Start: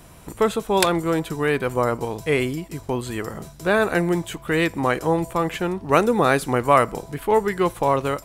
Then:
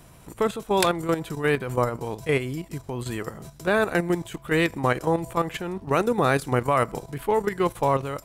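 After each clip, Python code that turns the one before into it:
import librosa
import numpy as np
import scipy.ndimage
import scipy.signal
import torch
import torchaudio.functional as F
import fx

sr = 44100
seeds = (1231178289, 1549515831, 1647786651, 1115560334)

y = fx.peak_eq(x, sr, hz=130.0, db=5.5, octaves=0.27)
y = fx.level_steps(y, sr, step_db=10)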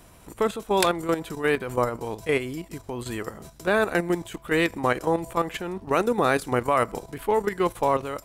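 y = fx.peak_eq(x, sr, hz=140.0, db=-8.5, octaves=0.48)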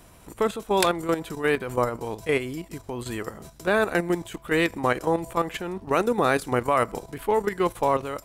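y = x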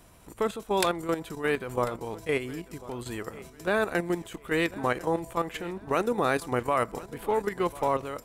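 y = fx.echo_feedback(x, sr, ms=1045, feedback_pct=31, wet_db=-19.0)
y = y * librosa.db_to_amplitude(-4.0)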